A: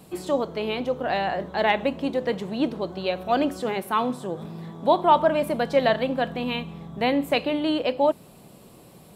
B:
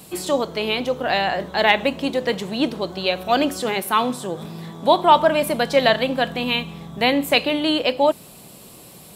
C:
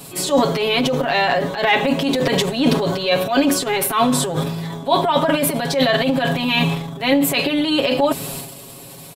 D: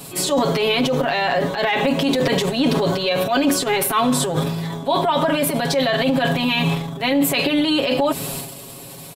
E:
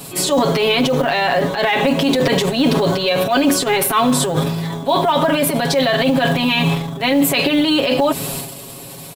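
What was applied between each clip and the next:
high shelf 2100 Hz +10.5 dB; gain +2.5 dB
transient shaper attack -9 dB, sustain +10 dB; comb 7.3 ms, depth 90%; vocal rider within 5 dB 0.5 s
limiter -10.5 dBFS, peak gain reduction 7.5 dB; gain +1 dB
short-mantissa float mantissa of 4-bit; gain +3 dB

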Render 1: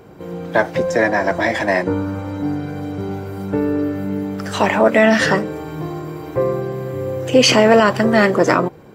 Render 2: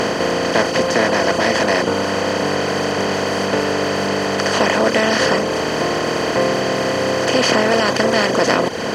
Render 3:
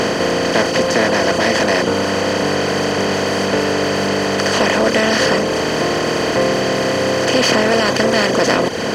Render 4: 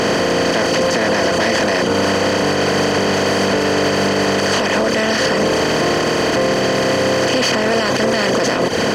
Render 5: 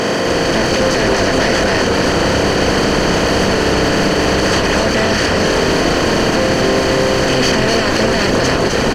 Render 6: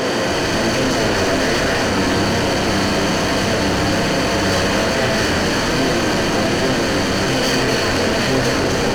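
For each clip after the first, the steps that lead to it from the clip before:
per-bin compression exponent 0.2; reverb removal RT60 0.87 s; gain -7.5 dB
in parallel at -5 dB: soft clip -18.5 dBFS, distortion -9 dB; on the sum: bell 970 Hz -2.5 dB 1.4 oct
limiter -13 dBFS, peak gain reduction 11 dB; gain +5 dB
frequency-shifting echo 0.255 s, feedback 58%, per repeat -130 Hz, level -3.5 dB
reverb, pre-delay 27 ms, DRR 1 dB; in parallel at -5 dB: wavefolder -14 dBFS; on the sum: flange 1.2 Hz, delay 7.3 ms, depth 3.9 ms, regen +65%; gain -2 dB

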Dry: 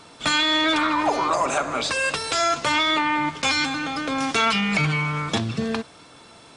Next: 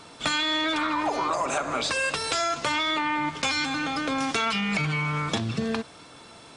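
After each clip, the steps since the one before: compressor, threshold -23 dBFS, peak gain reduction 6.5 dB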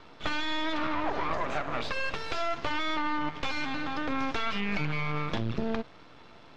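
half-wave rectifier; air absorption 220 m; gain +1 dB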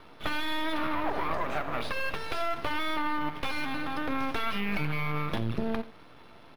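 echo 88 ms -17.5 dB; decimation joined by straight lines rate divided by 3×

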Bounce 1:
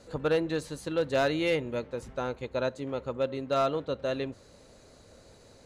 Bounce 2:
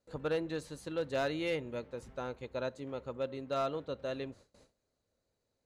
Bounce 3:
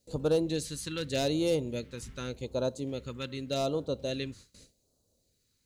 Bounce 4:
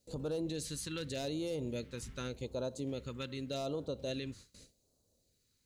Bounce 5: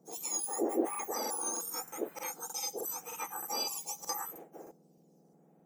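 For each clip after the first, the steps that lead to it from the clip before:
gate with hold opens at -43 dBFS; gain -7 dB
high shelf 3600 Hz +7 dB; phaser stages 2, 0.85 Hz, lowest notch 630–1900 Hz; gain +8 dB
limiter -27.5 dBFS, peak gain reduction 9.5 dB; gain -2 dB
spectrum mirrored in octaves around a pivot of 1800 Hz; crackling interface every 0.31 s, samples 2048, repeat, from 0.9; gain +6.5 dB

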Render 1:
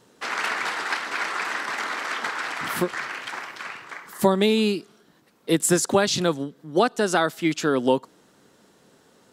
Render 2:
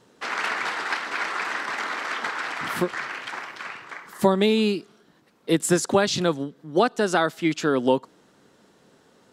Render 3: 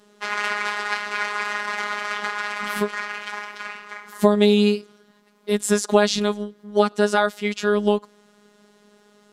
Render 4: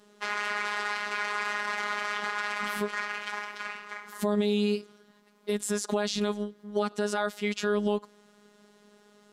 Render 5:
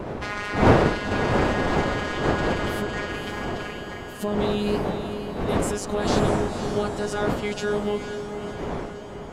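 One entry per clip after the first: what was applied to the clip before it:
high shelf 8300 Hz -8.5 dB
robotiser 207 Hz; harmonic-percussive split harmonic +7 dB; gain -2.5 dB
limiter -12 dBFS, peak gain reduction 10.5 dB; gain -3.5 dB
wind noise 590 Hz -27 dBFS; diffused feedback echo 0.521 s, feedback 58%, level -8 dB

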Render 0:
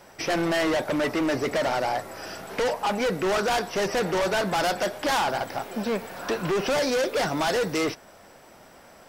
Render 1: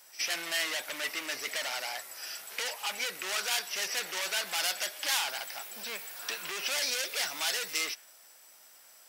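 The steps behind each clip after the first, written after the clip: differentiator; reverse echo 65 ms -17 dB; dynamic EQ 2400 Hz, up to +6 dB, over -54 dBFS, Q 1; gain +3 dB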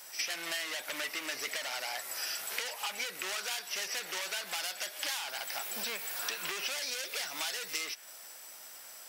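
compressor 6:1, threshold -40 dBFS, peak gain reduction 15.5 dB; gain +7 dB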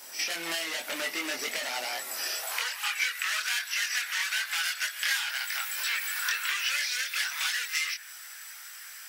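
chorus voices 6, 0.69 Hz, delay 23 ms, depth 1.3 ms; crackle 520/s -58 dBFS; high-pass sweep 230 Hz -> 1600 Hz, 2.18–2.73; gain +7 dB

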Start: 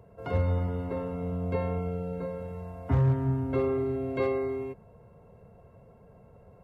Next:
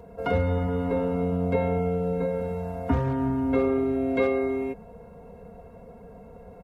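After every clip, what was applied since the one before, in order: in parallel at +2 dB: compressor, threshold -34 dBFS, peak gain reduction 13.5 dB; on the sum: comb 4.2 ms, depth 75%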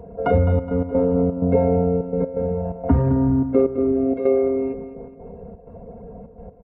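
formant sharpening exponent 1.5; step gate "xxxxx.x.xxx." 127 bpm -12 dB; feedback echo 0.21 s, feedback 43%, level -11.5 dB; gain +7 dB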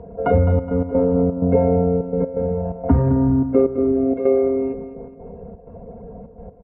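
Bessel low-pass 2300 Hz, order 2; gain +1.5 dB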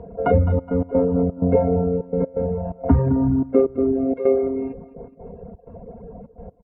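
reverb removal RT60 0.67 s

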